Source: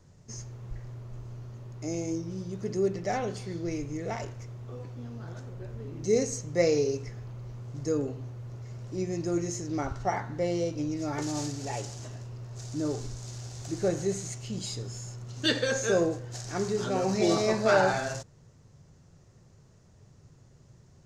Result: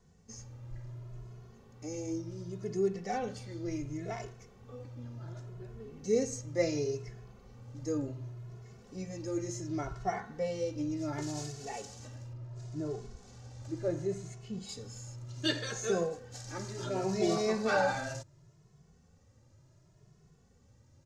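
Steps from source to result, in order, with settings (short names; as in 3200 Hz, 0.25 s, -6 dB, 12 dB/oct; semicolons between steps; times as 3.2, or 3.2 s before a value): 12.33–14.69 high shelf 3400 Hz -11.5 dB; endless flanger 2.3 ms +0.69 Hz; gain -2.5 dB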